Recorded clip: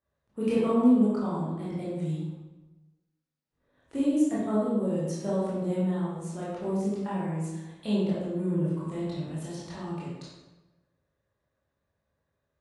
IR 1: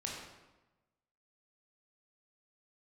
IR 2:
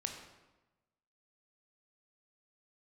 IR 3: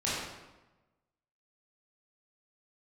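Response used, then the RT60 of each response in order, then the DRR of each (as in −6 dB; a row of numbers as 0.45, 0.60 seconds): 3; 1.1, 1.1, 1.1 seconds; −3.0, 3.0, −9.5 decibels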